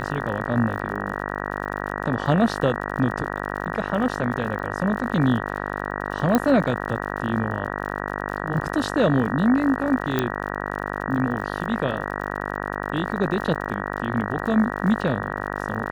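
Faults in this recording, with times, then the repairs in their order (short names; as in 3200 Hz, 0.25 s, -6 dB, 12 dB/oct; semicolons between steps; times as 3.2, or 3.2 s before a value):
buzz 50 Hz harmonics 38 -29 dBFS
crackle 50/s -33 dBFS
6.35 pop -6 dBFS
10.19 pop -8 dBFS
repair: de-click; de-hum 50 Hz, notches 38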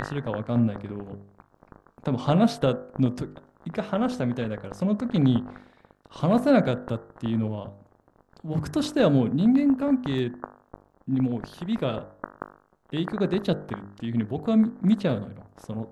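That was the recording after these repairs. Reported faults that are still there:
6.35 pop
10.19 pop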